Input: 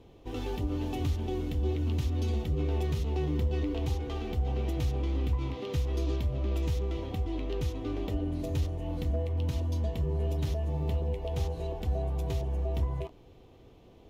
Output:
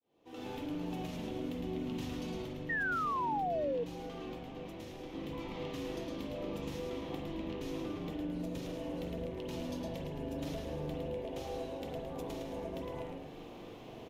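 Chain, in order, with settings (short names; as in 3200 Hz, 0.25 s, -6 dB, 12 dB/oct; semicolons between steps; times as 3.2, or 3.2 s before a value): opening faded in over 1.92 s; HPF 260 Hz 12 dB/oct; compressor 12:1, threshold -48 dBFS, peak gain reduction 16.5 dB; 2.42–5.13 flange 1.3 Hz, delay 6 ms, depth 1.7 ms, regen -62%; frequency-shifting echo 0.109 s, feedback 52%, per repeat -120 Hz, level -4 dB; reverb RT60 0.65 s, pre-delay 40 ms, DRR 1.5 dB; 2.69–3.84 painted sound fall 460–1900 Hz -41 dBFS; notch 390 Hz, Q 12; gain +7 dB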